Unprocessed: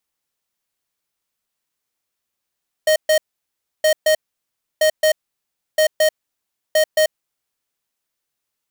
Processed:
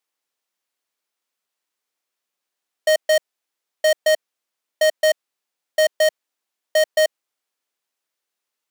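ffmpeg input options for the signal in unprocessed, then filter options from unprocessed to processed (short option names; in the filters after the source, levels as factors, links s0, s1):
-f lavfi -i "aevalsrc='0.2*(2*lt(mod(622*t,1),0.5)-1)*clip(min(mod(mod(t,0.97),0.22),0.09-mod(mod(t,0.97),0.22))/0.005,0,1)*lt(mod(t,0.97),0.44)':d=4.85:s=44100"
-af "highpass=300,highshelf=f=8500:g=-6"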